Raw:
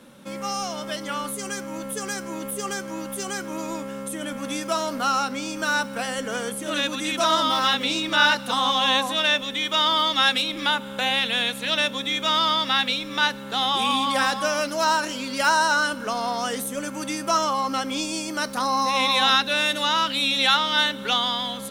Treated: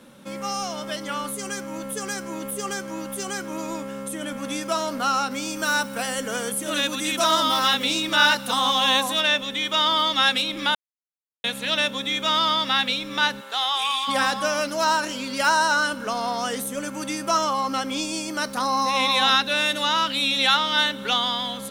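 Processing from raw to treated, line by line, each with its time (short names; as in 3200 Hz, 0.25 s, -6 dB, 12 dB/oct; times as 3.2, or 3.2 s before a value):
5.31–9.21 high shelf 8400 Hz +10.5 dB
10.75–11.44 mute
13.4–14.07 HPF 560 Hz -> 1200 Hz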